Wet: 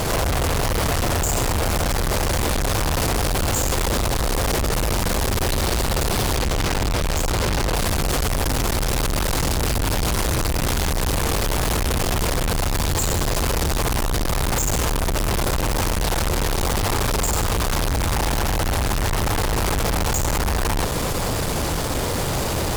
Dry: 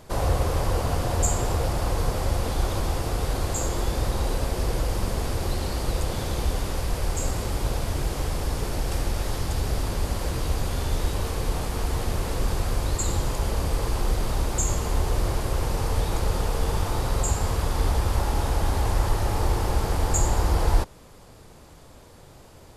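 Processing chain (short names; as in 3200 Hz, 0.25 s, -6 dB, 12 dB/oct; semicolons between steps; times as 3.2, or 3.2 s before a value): 6.36–7.75 LPF 6200 Hz; fuzz box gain 57 dB, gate -56 dBFS; gain -6.5 dB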